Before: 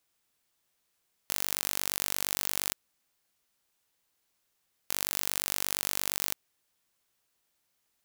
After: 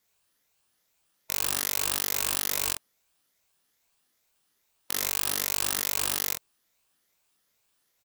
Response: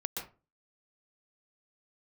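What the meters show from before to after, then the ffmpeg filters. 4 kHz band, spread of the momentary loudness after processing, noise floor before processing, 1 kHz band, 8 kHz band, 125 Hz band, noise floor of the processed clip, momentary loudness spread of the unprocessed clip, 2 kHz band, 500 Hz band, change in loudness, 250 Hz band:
+3.5 dB, 6 LU, −77 dBFS, +4.0 dB, +3.5 dB, +4.0 dB, −74 dBFS, 6 LU, +3.5 dB, +3.5 dB, +3.5 dB, +2.5 dB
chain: -af "afftfilt=real='re*pow(10,12/40*sin(2*PI*(0.89*log(max(b,1)*sr/1024/100)/log(2)-(2.4)*(pts-256)/sr)))':imag='im*pow(10,12/40*sin(2*PI*(0.89*log(max(b,1)*sr/1024/100)/log(2)-(2.4)*(pts-256)/sr)))':win_size=1024:overlap=0.75,aecho=1:1:23|47:0.562|0.473,aeval=exprs='val(0)*sgn(sin(2*PI*770*n/s))':channel_layout=same"

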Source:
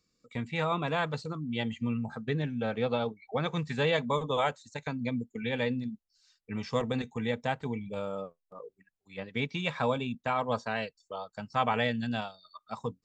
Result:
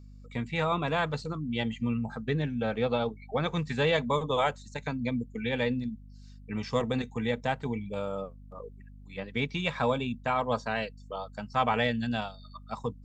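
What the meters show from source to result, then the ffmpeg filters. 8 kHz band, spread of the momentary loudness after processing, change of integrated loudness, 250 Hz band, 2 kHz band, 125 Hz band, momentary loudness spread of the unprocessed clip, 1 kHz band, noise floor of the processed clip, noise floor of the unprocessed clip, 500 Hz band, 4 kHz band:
can't be measured, 12 LU, +1.5 dB, +1.5 dB, +1.5 dB, +2.0 dB, 12 LU, +1.5 dB, −49 dBFS, −83 dBFS, +1.5 dB, +1.5 dB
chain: -af "acontrast=87,aeval=exprs='val(0)+0.00794*(sin(2*PI*50*n/s)+sin(2*PI*2*50*n/s)/2+sin(2*PI*3*50*n/s)/3+sin(2*PI*4*50*n/s)/4+sin(2*PI*5*50*n/s)/5)':channel_layout=same,volume=-5.5dB"

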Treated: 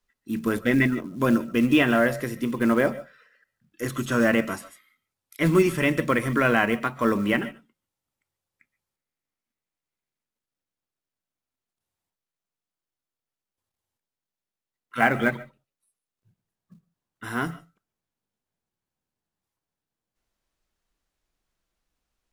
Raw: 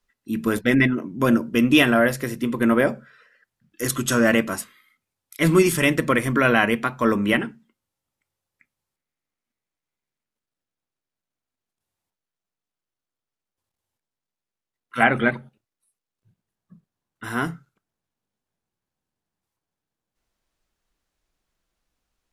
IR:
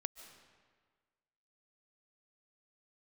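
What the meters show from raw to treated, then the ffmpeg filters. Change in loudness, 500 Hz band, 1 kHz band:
−3.0 dB, −2.5 dB, −2.5 dB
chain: -filter_complex "[1:a]atrim=start_sample=2205,atrim=end_sample=6615[link_01];[0:a][link_01]afir=irnorm=-1:irlink=0,acrossover=split=2900[link_02][link_03];[link_03]acompressor=threshold=-38dB:ratio=4:attack=1:release=60[link_04];[link_02][link_04]amix=inputs=2:normalize=0,acrusher=bits=7:mode=log:mix=0:aa=0.000001"

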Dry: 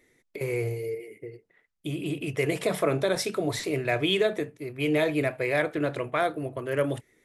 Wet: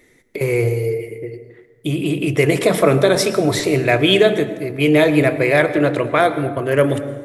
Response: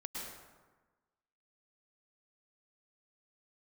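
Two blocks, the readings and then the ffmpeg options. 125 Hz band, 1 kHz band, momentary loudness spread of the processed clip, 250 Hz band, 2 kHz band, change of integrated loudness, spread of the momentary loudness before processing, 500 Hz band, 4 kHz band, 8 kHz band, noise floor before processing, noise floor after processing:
+12.5 dB, +11.0 dB, 11 LU, +12.0 dB, +10.5 dB, +11.5 dB, 11 LU, +11.5 dB, +10.5 dB, +10.5 dB, −73 dBFS, −54 dBFS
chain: -filter_complex "[0:a]asplit=2[link_01][link_02];[1:a]atrim=start_sample=2205,lowshelf=frequency=440:gain=7[link_03];[link_02][link_03]afir=irnorm=-1:irlink=0,volume=-9.5dB[link_04];[link_01][link_04]amix=inputs=2:normalize=0,volume=9dB"

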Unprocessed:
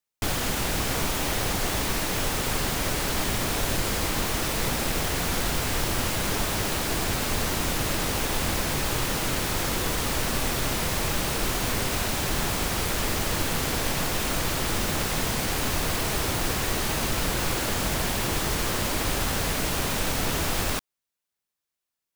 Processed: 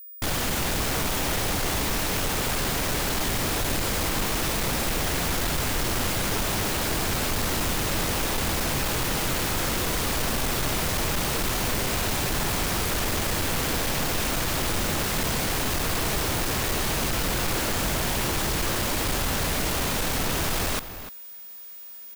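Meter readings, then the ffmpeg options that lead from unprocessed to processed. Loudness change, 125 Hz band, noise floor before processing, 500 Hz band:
+1.0 dB, +0.5 dB, below −85 dBFS, +0.5 dB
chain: -filter_complex "[0:a]areverse,acompressor=mode=upward:threshold=-34dB:ratio=2.5,areverse,asoftclip=type=tanh:threshold=-25.5dB,aeval=exprs='val(0)+0.00631*sin(2*PI*15000*n/s)':channel_layout=same,asplit=2[link_01][link_02];[link_02]adelay=297.4,volume=-12dB,highshelf=frequency=4000:gain=-6.69[link_03];[link_01][link_03]amix=inputs=2:normalize=0,volume=4dB"

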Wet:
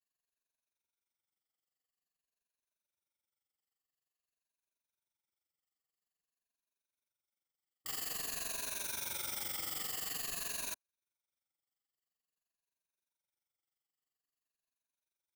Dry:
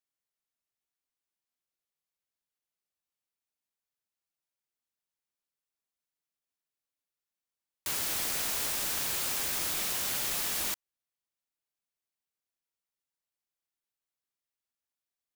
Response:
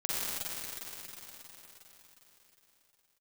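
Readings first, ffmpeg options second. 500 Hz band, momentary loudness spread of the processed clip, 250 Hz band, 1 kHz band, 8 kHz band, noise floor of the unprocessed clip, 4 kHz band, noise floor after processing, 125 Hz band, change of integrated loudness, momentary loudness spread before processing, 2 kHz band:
−8.5 dB, 4 LU, −9.0 dB, −8.5 dB, −8.0 dB, below −85 dBFS, −8.5 dB, below −85 dBFS, −9.0 dB, −8.0 dB, 4 LU, −8.0 dB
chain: -af "afftfilt=real='re*pow(10,15/40*sin(2*PI*(1.5*log(max(b,1)*sr/1024/100)/log(2)-(-0.49)*(pts-256)/sr)))':imag='im*pow(10,15/40*sin(2*PI*(1.5*log(max(b,1)*sr/1024/100)/log(2)-(-0.49)*(pts-256)/sr)))':win_size=1024:overlap=0.75,tremolo=f=23:d=0.857,asoftclip=type=tanh:threshold=-34.5dB,volume=-1.5dB"

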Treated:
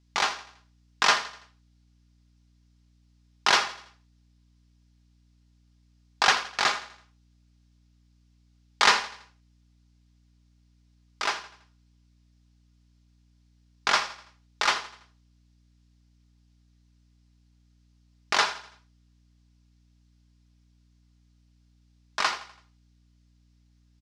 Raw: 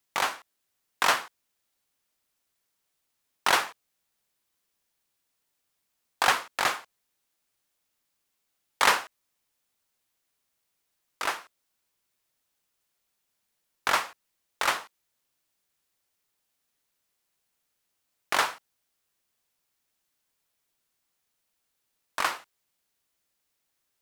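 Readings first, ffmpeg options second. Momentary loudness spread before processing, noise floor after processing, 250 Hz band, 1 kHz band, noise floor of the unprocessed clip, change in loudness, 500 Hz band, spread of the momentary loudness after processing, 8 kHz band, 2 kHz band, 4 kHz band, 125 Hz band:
15 LU, −63 dBFS, +0.5 dB, +1.0 dB, −79 dBFS, +1.5 dB, −0.5 dB, 16 LU, +1.0 dB, +1.5 dB, +4.5 dB, +2.5 dB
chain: -af "lowpass=frequency=5300:width_type=q:width=2,bandreject=frequency=580:width=13,aecho=1:1:4.9:0.36,aeval=exprs='val(0)+0.000708*(sin(2*PI*60*n/s)+sin(2*PI*2*60*n/s)/2+sin(2*PI*3*60*n/s)/3+sin(2*PI*4*60*n/s)/4+sin(2*PI*5*60*n/s)/5)':channel_layout=same,aecho=1:1:83|166|249|332:0.168|0.0739|0.0325|0.0143"

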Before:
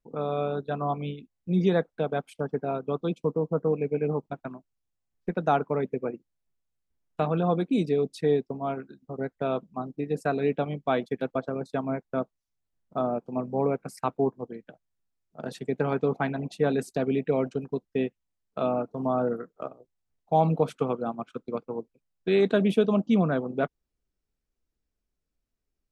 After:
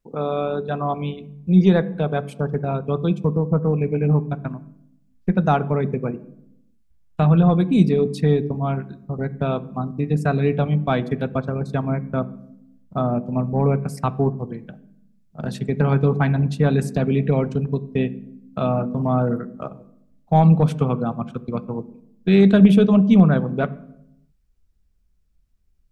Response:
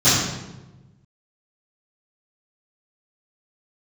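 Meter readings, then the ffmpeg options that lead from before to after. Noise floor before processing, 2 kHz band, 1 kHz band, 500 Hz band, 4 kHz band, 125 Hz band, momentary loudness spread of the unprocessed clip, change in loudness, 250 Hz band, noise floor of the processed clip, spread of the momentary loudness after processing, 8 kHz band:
−83 dBFS, +5.5 dB, +4.5 dB, +3.5 dB, +5.5 dB, +14.0 dB, 13 LU, +8.0 dB, +10.0 dB, −60 dBFS, 15 LU, can't be measured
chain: -filter_complex "[0:a]acontrast=50,asplit=2[link_01][link_02];[1:a]atrim=start_sample=2205,asetrate=66150,aresample=44100,lowpass=3700[link_03];[link_02][link_03]afir=irnorm=-1:irlink=0,volume=-34.5dB[link_04];[link_01][link_04]amix=inputs=2:normalize=0,asubboost=boost=5.5:cutoff=150"

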